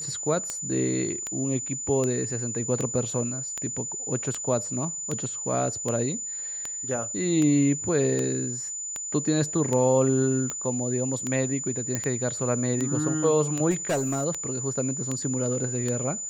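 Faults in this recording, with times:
tick 78 rpm -15 dBFS
tone 7000 Hz -31 dBFS
11.95 pop -12 dBFS
13.7–14.25 clipped -21.5 dBFS

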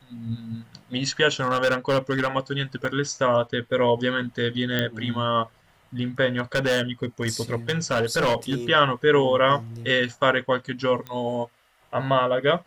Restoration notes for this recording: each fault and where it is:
1.28–2.28 clipped -17 dBFS
2.85 gap 2.1 ms
4.79 pop -10 dBFS
6.38–8.55 clipped -18 dBFS
11.07 pop -20 dBFS

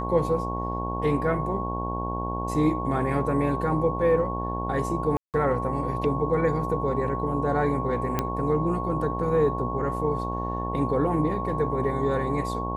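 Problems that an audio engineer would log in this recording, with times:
buzz 60 Hz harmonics 19 -31 dBFS
tone 1100 Hz -31 dBFS
5.17–5.34 gap 0.168 s
8.19 pop -10 dBFS

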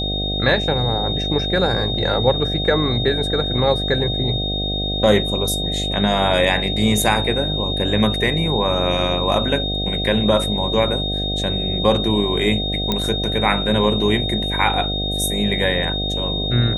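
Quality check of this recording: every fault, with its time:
buzz 50 Hz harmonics 15 -25 dBFS
tone 3700 Hz -23 dBFS
12.92 pop -6 dBFS

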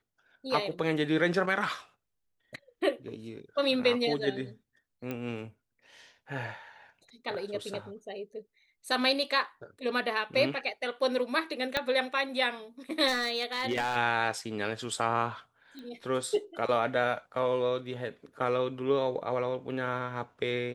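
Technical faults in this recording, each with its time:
5.11 pop -22 dBFS
11.77 pop -13 dBFS
13.07–13.97 clipped -24.5 dBFS
15.79 pop -32 dBFS

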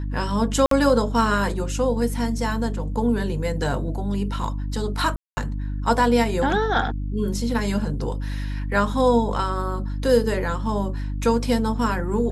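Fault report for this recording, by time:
hum 50 Hz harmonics 6 -27 dBFS
0.66–0.71 gap 53 ms
5.16–5.37 gap 0.21 s

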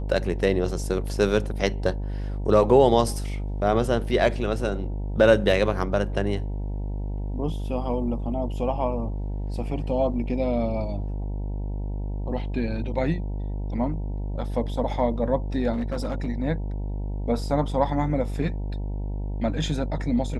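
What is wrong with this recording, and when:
buzz 50 Hz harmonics 19 -29 dBFS
15.72–16.29 clipped -23 dBFS

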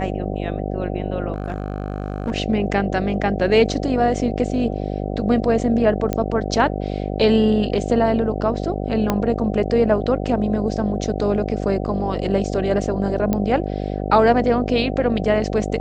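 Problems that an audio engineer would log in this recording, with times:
buzz 50 Hz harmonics 15 -25 dBFS
1.32–2.32 clipped -19 dBFS
6.13 pop -10 dBFS
9.1 pop -5 dBFS
13.33 pop -8 dBFS

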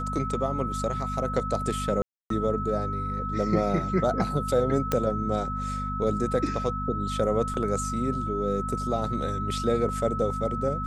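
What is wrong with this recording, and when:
hum 50 Hz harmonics 5 -33 dBFS
tone 1300 Hz -31 dBFS
2.02–2.3 gap 0.283 s
4.92 pop -10 dBFS
7.54 gap 3.5 ms

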